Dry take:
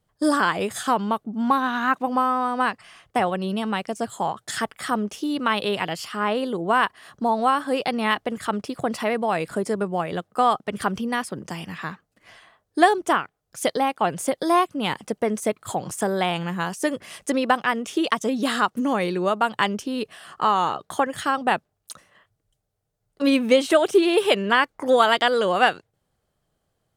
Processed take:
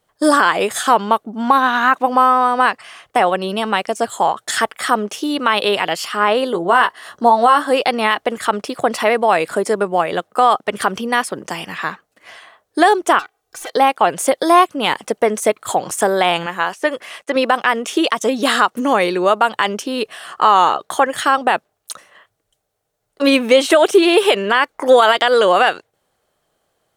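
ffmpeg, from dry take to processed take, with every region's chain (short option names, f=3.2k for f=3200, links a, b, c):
-filter_complex "[0:a]asettb=1/sr,asplit=3[a][b][c];[a]atrim=end=6.524[d];[b]atrim=start=6.52:end=7.71,asetpts=PTS-STARTPTS,afade=t=in:d=0.004:c=qsin,afade=t=out:st=1.186:d=0.004:c=qsin,bandreject=f=2.4k:w=8,asplit=2[e][f];[f]adelay=17,volume=-7dB[g];[e][g]amix=inputs=2:normalize=0,atrim=end_sample=52479[h];[c]atrim=start=7.706[i];[d][h]acrossfade=d=0.004:c1=hsin:c2=qsin[j];[j][i]acrossfade=d=0.004:c1=qsin:c2=hsin,asettb=1/sr,asplit=3[k][l][m];[k]atrim=end=13.194[n];[l]atrim=start=13.19:end=13.73,asetpts=PTS-STARTPTS,afade=t=in:d=0.004:c=qsin,afade=t=out:st=0.536:d=0.004:c=qsin,aeval=exprs='(tanh(31.6*val(0)+0.2)-tanh(0.2))/31.6':c=same,acrossover=split=480|2700[o][p][q];[o]acompressor=threshold=-54dB:ratio=4[r];[p]acompressor=threshold=-39dB:ratio=4[s];[q]acompressor=threshold=-44dB:ratio=4[t];[r][s][t]amix=inputs=3:normalize=0,aecho=1:1:2.6:0.73,atrim=end_sample=23814[u];[m]atrim=start=13.726[v];[n][u]acrossfade=d=0.004:c1=hsin:c2=qsin[w];[w][v]acrossfade=d=0.004:c1=qsin:c2=hsin,asettb=1/sr,asplit=3[x][y][z];[x]atrim=end=16.464[aa];[y]atrim=start=16.46:end=17.36,asetpts=PTS-STARTPTS,afade=t=in:d=0.004:c=qsin,afade=t=out:st=0.896:d=0.004:c=qsin,acrossover=split=3500[ab][ac];[ac]acompressor=threshold=-51dB:ratio=4:attack=1:release=60[ad];[ab][ad]amix=inputs=2:normalize=0,agate=range=-33dB:threshold=-48dB:ratio=3:release=100:detection=peak,lowshelf=f=290:g=-11.5[ae];[z]atrim=start=17.356[af];[aa][ae]acrossfade=d=0.004:c1=hsin:c2=qsin[ag];[ag][af]acrossfade=d=0.004:c1=qsin:c2=hsin,bass=f=250:g=-14,treble=f=4k:g=-1,bandreject=f=4.9k:w=26,alimiter=level_in=11dB:limit=-1dB:release=50:level=0:latency=1,volume=-1dB"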